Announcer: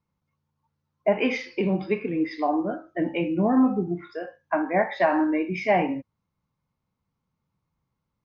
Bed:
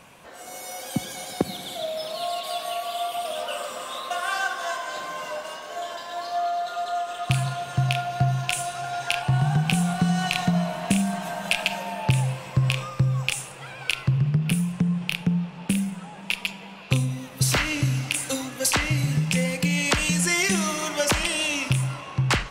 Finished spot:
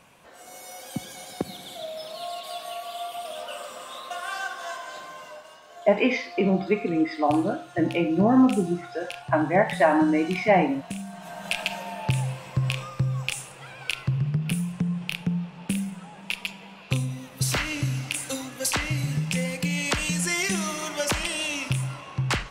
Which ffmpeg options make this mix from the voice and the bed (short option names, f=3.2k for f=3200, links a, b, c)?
-filter_complex "[0:a]adelay=4800,volume=2dB[a];[1:a]volume=3.5dB,afade=t=out:st=4.84:d=0.65:silence=0.446684,afade=t=in:st=11.13:d=0.46:silence=0.354813[b];[a][b]amix=inputs=2:normalize=0"